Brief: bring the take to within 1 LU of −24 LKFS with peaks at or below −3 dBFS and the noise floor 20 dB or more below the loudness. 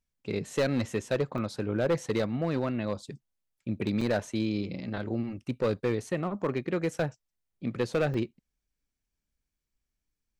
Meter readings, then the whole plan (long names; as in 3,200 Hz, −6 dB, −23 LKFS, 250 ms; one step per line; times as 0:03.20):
share of clipped samples 0.8%; peaks flattened at −20.5 dBFS; number of dropouts 3; longest dropout 4.1 ms; integrated loudness −31.0 LKFS; sample peak −20.5 dBFS; target loudness −24.0 LKFS
→ clipped peaks rebuilt −20.5 dBFS
repair the gap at 0:01.38/0:04.01/0:08.14, 4.1 ms
level +7 dB